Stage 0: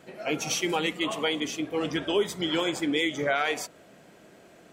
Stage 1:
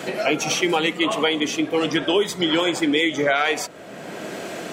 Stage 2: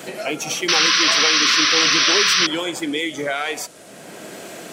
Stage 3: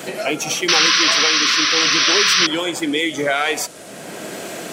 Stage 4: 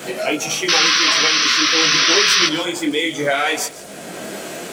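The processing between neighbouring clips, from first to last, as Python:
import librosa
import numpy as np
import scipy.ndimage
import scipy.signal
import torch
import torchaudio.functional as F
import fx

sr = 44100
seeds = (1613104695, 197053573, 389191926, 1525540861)

y1 = fx.highpass(x, sr, hz=160.0, slope=6)
y1 = fx.high_shelf(y1, sr, hz=8200.0, db=-5.0)
y1 = fx.band_squash(y1, sr, depth_pct=70)
y1 = y1 * librosa.db_to_amplitude(7.5)
y2 = fx.dmg_noise_band(y1, sr, seeds[0], low_hz=2100.0, high_hz=10000.0, level_db=-50.0)
y2 = fx.high_shelf(y2, sr, hz=6700.0, db=10.0)
y2 = fx.spec_paint(y2, sr, seeds[1], shape='noise', start_s=0.68, length_s=1.79, low_hz=1000.0, high_hz=6100.0, level_db=-12.0)
y2 = y2 * librosa.db_to_amplitude(-4.5)
y3 = fx.rider(y2, sr, range_db=4, speed_s=2.0)
y3 = y3 * librosa.db_to_amplitude(1.5)
y4 = fx.dmg_crackle(y3, sr, seeds[2], per_s=110.0, level_db=-27.0)
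y4 = y4 + 10.0 ** (-18.0 / 20.0) * np.pad(y4, (int(157 * sr / 1000.0), 0))[:len(y4)]
y4 = fx.detune_double(y4, sr, cents=18)
y4 = y4 * librosa.db_to_amplitude(4.0)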